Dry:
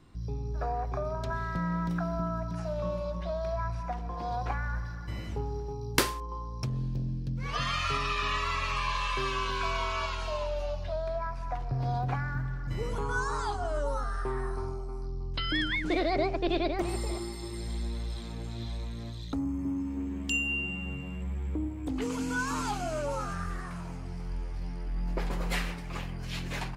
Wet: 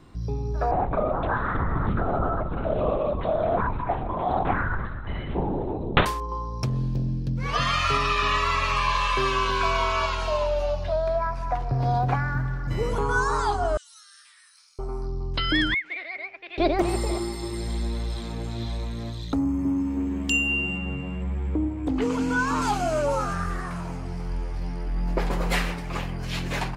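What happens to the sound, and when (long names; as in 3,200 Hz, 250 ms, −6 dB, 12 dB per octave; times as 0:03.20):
0:00.71–0:06.06: linear-prediction vocoder at 8 kHz whisper
0:13.77–0:14.79: inverse Chebyshev high-pass filter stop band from 630 Hz, stop band 70 dB
0:15.74–0:16.58: resonant band-pass 2,200 Hz, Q 5.2
0:20.78–0:22.62: high-shelf EQ 6,900 Hz −12 dB
whole clip: parametric band 610 Hz +3.5 dB 2.7 octaves; level +5.5 dB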